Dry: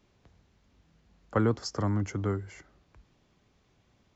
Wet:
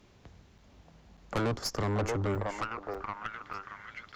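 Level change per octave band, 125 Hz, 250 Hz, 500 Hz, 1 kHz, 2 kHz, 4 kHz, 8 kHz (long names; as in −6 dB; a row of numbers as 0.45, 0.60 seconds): −3.0 dB, −4.0 dB, 0.0 dB, +3.5 dB, +4.5 dB, +3.5 dB, can't be measured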